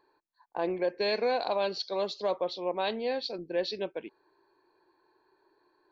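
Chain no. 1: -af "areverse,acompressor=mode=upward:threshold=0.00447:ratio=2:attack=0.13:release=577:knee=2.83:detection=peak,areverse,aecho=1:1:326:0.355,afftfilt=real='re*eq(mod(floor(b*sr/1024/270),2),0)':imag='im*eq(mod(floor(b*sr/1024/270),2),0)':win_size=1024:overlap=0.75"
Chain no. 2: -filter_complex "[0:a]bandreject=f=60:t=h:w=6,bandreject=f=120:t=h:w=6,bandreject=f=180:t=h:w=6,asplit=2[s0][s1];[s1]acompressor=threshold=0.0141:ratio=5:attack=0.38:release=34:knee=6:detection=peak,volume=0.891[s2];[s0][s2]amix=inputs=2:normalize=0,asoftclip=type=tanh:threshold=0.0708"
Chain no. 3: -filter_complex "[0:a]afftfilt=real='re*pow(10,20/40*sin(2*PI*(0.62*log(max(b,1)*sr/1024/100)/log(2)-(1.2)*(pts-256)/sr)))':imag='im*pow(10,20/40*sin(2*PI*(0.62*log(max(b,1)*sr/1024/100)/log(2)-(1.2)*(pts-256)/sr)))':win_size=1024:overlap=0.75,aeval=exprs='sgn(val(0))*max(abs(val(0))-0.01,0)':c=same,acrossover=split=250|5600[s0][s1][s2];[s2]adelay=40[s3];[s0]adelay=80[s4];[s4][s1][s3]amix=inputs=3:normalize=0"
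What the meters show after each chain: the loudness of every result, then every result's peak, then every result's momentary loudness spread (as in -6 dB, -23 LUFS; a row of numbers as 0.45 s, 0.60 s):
-35.0 LUFS, -31.5 LUFS, -28.5 LUFS; -21.0 dBFS, -23.5 dBFS, -13.0 dBFS; 9 LU, 6 LU, 11 LU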